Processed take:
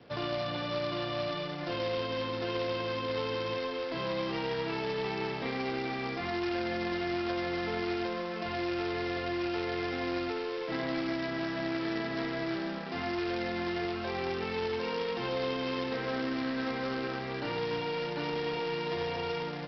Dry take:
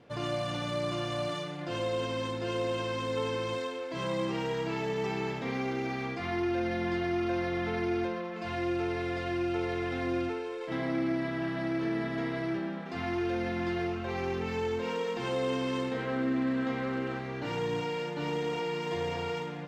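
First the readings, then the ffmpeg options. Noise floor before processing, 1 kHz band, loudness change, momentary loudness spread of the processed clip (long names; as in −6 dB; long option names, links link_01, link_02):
−38 dBFS, 0.0 dB, −1.0 dB, 2 LU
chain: -filter_complex "[0:a]acrossover=split=88|300|700[link_01][link_02][link_03][link_04];[link_01]acompressor=threshold=-59dB:ratio=4[link_05];[link_02]acompressor=threshold=-45dB:ratio=4[link_06];[link_03]acompressor=threshold=-37dB:ratio=4[link_07];[link_04]acompressor=threshold=-39dB:ratio=4[link_08];[link_05][link_06][link_07][link_08]amix=inputs=4:normalize=0,aresample=11025,acrusher=bits=2:mode=log:mix=0:aa=0.000001,aresample=44100,volume=2dB"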